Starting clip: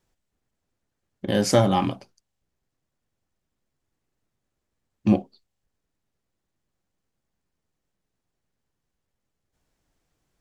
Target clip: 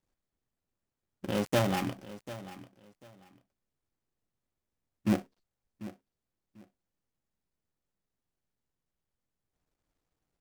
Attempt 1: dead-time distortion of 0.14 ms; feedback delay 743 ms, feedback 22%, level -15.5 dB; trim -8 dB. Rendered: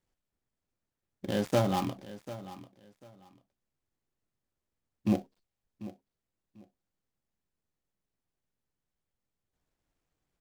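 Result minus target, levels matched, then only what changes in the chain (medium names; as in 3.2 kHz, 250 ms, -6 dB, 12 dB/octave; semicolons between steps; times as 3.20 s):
dead-time distortion: distortion -6 dB
change: dead-time distortion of 0.32 ms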